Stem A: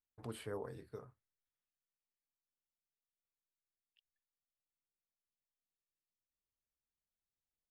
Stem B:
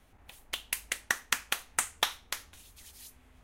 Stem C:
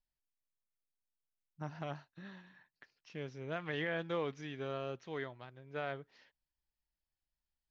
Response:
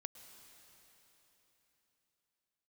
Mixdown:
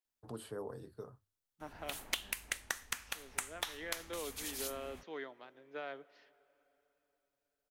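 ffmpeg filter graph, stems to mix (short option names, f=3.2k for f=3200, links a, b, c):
-filter_complex "[0:a]equalizer=f=2.2k:w=2.3:g=-12.5,bandreject=f=50:t=h:w=6,bandreject=f=100:t=h:w=6,adelay=50,volume=2dB[a];[1:a]dynaudnorm=f=130:g=3:m=7.5dB,alimiter=limit=-6.5dB:level=0:latency=1:release=231,adelay=1600,volume=2.5dB[b];[2:a]highpass=f=230:w=0.5412,highpass=f=230:w=1.3066,volume=-3.5dB,asplit=2[c][d];[d]volume=-9dB[e];[3:a]atrim=start_sample=2205[f];[e][f]afir=irnorm=-1:irlink=0[g];[a][b][c][g]amix=inputs=4:normalize=0,acrossover=split=140|3000[h][i][j];[h]acompressor=threshold=-57dB:ratio=4[k];[i]acompressor=threshold=-38dB:ratio=4[l];[j]acompressor=threshold=-38dB:ratio=4[m];[k][l][m]amix=inputs=3:normalize=0,alimiter=limit=-16.5dB:level=0:latency=1:release=448"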